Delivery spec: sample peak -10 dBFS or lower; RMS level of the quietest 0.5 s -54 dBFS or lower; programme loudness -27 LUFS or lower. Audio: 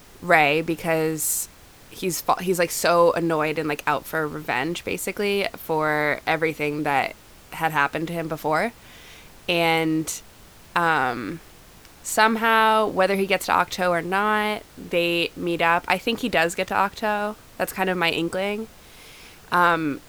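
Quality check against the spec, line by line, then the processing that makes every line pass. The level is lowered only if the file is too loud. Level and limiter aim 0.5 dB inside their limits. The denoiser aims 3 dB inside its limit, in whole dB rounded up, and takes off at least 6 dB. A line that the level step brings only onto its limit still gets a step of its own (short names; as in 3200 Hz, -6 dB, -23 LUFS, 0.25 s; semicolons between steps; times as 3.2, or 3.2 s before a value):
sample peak -3.5 dBFS: fail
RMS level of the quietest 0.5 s -48 dBFS: fail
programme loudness -22.5 LUFS: fail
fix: denoiser 6 dB, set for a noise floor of -48 dBFS; gain -5 dB; limiter -10.5 dBFS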